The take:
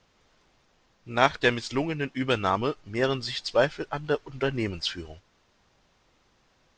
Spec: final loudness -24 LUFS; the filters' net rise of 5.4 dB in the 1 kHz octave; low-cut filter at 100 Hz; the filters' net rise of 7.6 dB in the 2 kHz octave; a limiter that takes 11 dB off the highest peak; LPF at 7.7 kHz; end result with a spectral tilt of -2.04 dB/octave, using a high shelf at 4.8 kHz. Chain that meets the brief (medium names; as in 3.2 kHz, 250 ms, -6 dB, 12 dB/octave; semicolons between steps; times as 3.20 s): high-pass 100 Hz; low-pass 7.7 kHz; peaking EQ 1 kHz +4.5 dB; peaking EQ 2 kHz +7.5 dB; treble shelf 4.8 kHz +5.5 dB; trim +1.5 dB; peak limiter -6.5 dBFS